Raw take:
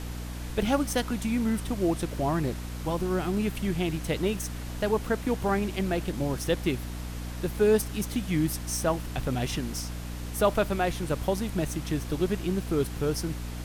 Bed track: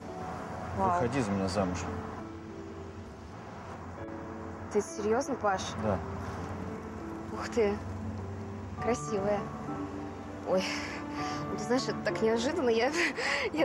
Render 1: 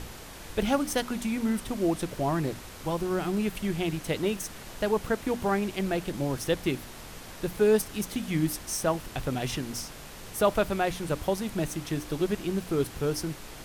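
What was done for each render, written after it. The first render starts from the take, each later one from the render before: notches 60/120/180/240/300 Hz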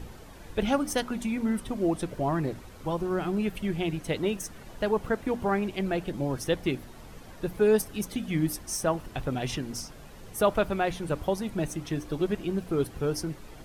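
denoiser 10 dB, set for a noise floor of -44 dBFS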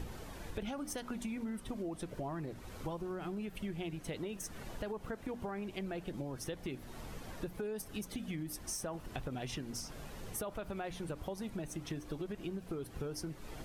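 limiter -20.5 dBFS, peak gain reduction 9.5 dB; compressor 6:1, threshold -38 dBFS, peak gain reduction 13 dB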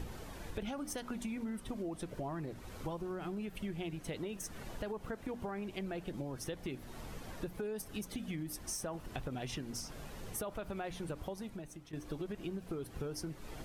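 11.21–11.93 fade out, to -14 dB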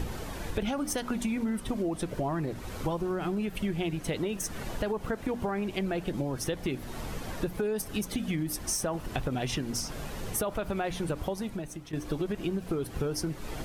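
gain +9.5 dB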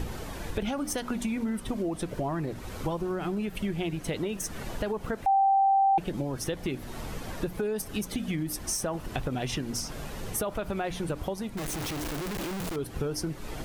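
5.26–5.98 bleep 782 Hz -19 dBFS; 11.57–12.76 infinite clipping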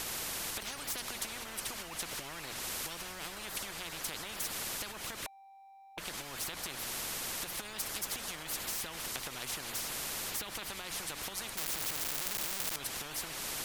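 compressor, threshold -27 dBFS, peak gain reduction 6 dB; spectral compressor 10:1

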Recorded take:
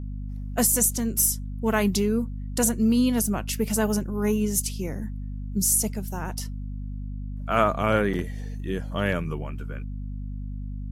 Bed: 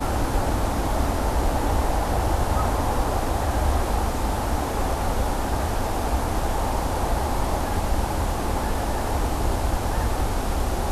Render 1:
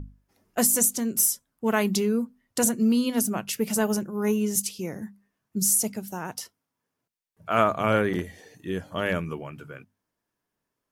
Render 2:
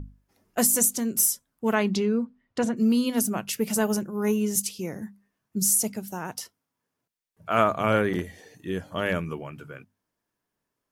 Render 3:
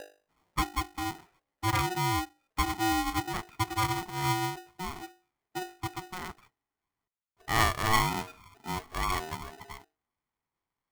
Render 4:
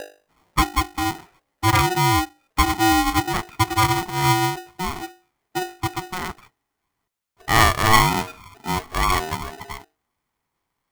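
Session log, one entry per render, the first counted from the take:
notches 50/100/150/200/250 Hz
1.73–2.76 LPF 5300 Hz -> 2800 Hz
rippled Chebyshev low-pass 2000 Hz, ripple 9 dB; polarity switched at an audio rate 550 Hz
gain +10.5 dB; limiter -3 dBFS, peak gain reduction 1.5 dB

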